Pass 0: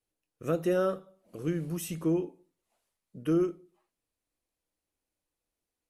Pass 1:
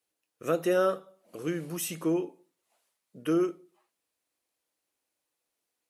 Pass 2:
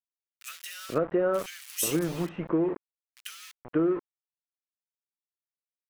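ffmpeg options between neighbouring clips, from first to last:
-af "highpass=f=510:p=1,volume=1.88"
-filter_complex "[0:a]acompressor=threshold=0.0355:ratio=6,aeval=exprs='val(0)*gte(abs(val(0)),0.00944)':c=same,acrossover=split=1900[s0][s1];[s0]adelay=480[s2];[s2][s1]amix=inputs=2:normalize=0,volume=2.24"

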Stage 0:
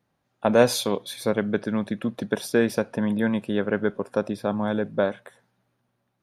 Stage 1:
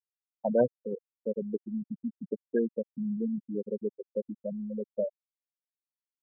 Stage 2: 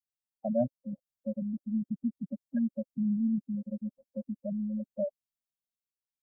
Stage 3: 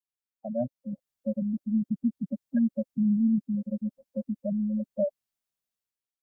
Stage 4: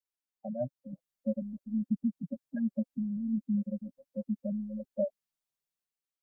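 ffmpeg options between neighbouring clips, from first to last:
-af "afftfilt=real='re*gte(hypot(re,im),0.355)':imag='im*gte(hypot(re,im),0.355)':win_size=1024:overlap=0.75,volume=0.473"
-af "equalizer=f=1400:t=o:w=1.5:g=-14.5,dynaudnorm=f=130:g=11:m=1.58,afftfilt=real='re*eq(mod(floor(b*sr/1024/260),2),0)':imag='im*eq(mod(floor(b*sr/1024/260),2),0)':win_size=1024:overlap=0.75"
-af "dynaudnorm=f=520:g=3:m=3.16,volume=0.562"
-af "flanger=delay=1.8:depth=5.9:regen=11:speed=0.63:shape=triangular"

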